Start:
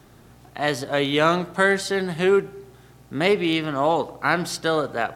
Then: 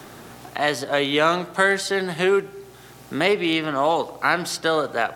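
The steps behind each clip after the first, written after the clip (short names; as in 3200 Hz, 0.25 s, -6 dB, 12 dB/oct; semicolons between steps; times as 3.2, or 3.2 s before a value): low shelf 250 Hz -9 dB; three-band squash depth 40%; gain +2 dB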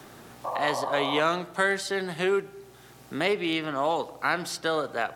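painted sound noise, 0.44–1.21, 500–1200 Hz -25 dBFS; gain -6 dB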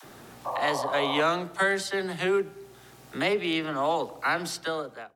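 ending faded out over 0.68 s; dispersion lows, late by 41 ms, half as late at 430 Hz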